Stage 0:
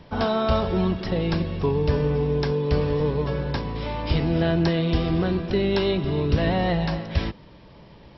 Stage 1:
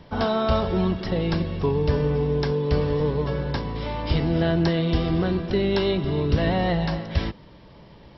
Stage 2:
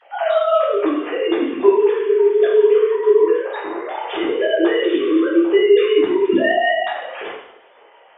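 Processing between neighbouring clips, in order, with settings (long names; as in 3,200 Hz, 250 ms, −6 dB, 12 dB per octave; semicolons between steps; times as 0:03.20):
notch filter 2,500 Hz, Q 20
three sine waves on the formant tracks; coupled-rooms reverb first 0.72 s, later 2.3 s, from −27 dB, DRR −7 dB; level −1 dB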